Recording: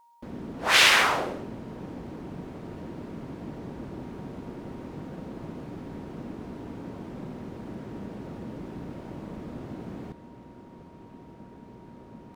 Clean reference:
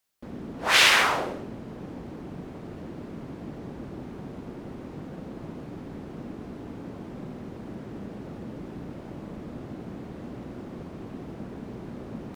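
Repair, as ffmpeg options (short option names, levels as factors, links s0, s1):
-af "bandreject=f=940:w=30,asetnsamples=n=441:p=0,asendcmd='10.12 volume volume 9dB',volume=1"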